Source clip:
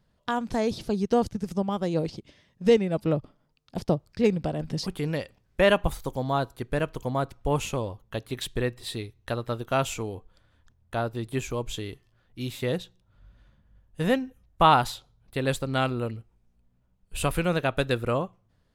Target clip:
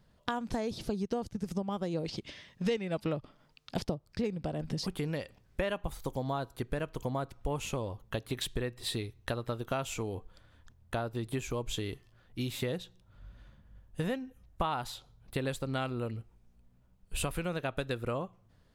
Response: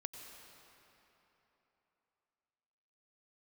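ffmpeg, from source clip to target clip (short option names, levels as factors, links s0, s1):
-filter_complex "[0:a]acompressor=threshold=0.02:ratio=6,asettb=1/sr,asplit=3[s0][s1][s2];[s0]atrim=end=2.064[s3];[s1]atrim=start=2.06:end=3.85,asetpts=PTS-STARTPTS,afade=t=in:d=0.004:c=qsin,afade=t=out:st=1.786:d=0.004:c=qsin,equalizer=f=2800:w=0.36:g=8[s4];[s2]atrim=start=3.846[s5];[s3][s4]acrossfade=d=0.004:c1=hsin:c2=qsin[s6];[s6][s5]acrossfade=d=0.004:c1=qsin:c2=hsin,volume=1.41"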